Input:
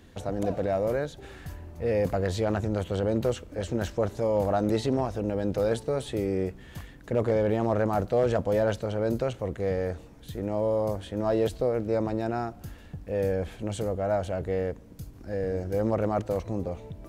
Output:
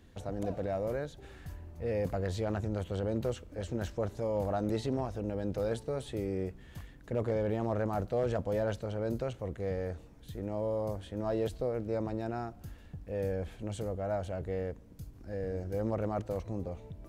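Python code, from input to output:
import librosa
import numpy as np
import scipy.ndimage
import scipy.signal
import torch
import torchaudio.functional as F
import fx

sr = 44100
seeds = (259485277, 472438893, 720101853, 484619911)

y = fx.low_shelf(x, sr, hz=120.0, db=5.0)
y = F.gain(torch.from_numpy(y), -7.5).numpy()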